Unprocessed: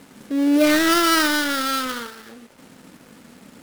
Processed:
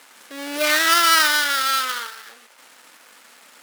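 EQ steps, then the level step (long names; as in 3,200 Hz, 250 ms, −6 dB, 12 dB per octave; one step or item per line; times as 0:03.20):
high-pass filter 950 Hz 12 dB per octave
+4.0 dB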